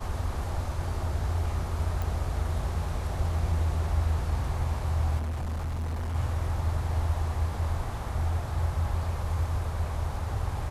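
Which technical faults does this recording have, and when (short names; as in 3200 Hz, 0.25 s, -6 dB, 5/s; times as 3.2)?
2.02 pop
5.17–6.16 clipped -28.5 dBFS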